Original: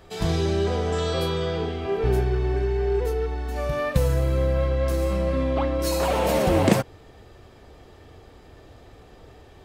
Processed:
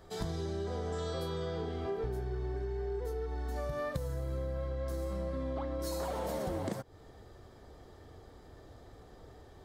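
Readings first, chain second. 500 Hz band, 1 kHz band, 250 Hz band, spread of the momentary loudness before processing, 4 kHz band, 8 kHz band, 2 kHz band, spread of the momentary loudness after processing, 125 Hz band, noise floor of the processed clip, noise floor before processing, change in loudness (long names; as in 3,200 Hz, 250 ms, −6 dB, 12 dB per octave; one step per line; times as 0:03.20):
−13.0 dB, −13.0 dB, −14.0 dB, 6 LU, −14.5 dB, −13.5 dB, −15.0 dB, 19 LU, −13.5 dB, −55 dBFS, −49 dBFS, −13.5 dB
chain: parametric band 2,600 Hz −11.5 dB 0.45 octaves
downward compressor 10 to 1, threshold −27 dBFS, peak gain reduction 15 dB
level −5.5 dB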